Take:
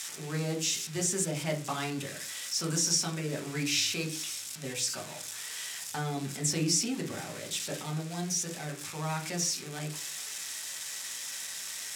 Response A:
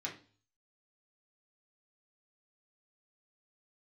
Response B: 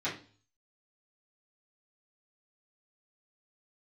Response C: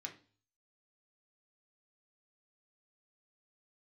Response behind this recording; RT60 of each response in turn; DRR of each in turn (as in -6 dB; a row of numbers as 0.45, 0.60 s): C; 0.40, 0.40, 0.40 s; -3.5, -11.0, 1.0 dB